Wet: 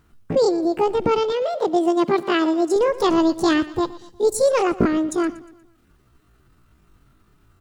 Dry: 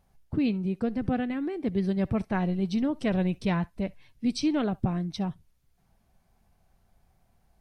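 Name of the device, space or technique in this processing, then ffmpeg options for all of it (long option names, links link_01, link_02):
chipmunk voice: -filter_complex "[0:a]asetrate=78577,aresample=44100,atempo=0.561231,asettb=1/sr,asplit=3[link_01][link_02][link_03];[link_01]atrim=end=1.324[link_04];[link_02]atrim=start=1.32:end=2.76,asetpts=PTS-STARTPTS,afade=type=in:duration=0.004:curve=qsin,afade=type=out:start_time=1.436:duration=0.004:curve=qsin,highpass=220[link_05];[link_03]atrim=start=2.756[link_06];[link_04][link_05]acrossfade=duration=0.004:curve1=hsin:curve2=qsin[link_07];[link_07][link_06]acrossfade=duration=0.004:curve1=qsin:curve2=hsin,aecho=1:1:119|238|357|476:0.126|0.0567|0.0255|0.0115,volume=8.5dB"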